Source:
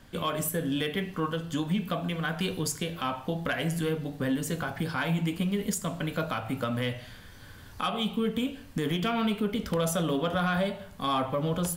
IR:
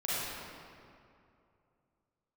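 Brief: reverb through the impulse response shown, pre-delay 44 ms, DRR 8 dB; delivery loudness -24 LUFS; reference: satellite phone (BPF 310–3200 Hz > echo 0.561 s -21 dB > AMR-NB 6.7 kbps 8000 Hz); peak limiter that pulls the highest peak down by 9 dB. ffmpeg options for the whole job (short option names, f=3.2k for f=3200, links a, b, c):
-filter_complex "[0:a]alimiter=level_in=5dB:limit=-24dB:level=0:latency=1,volume=-5dB,asplit=2[a][b];[1:a]atrim=start_sample=2205,adelay=44[c];[b][c]afir=irnorm=-1:irlink=0,volume=-15.5dB[d];[a][d]amix=inputs=2:normalize=0,highpass=310,lowpass=3.2k,aecho=1:1:561:0.0891,volume=17.5dB" -ar 8000 -c:a libopencore_amrnb -b:a 6700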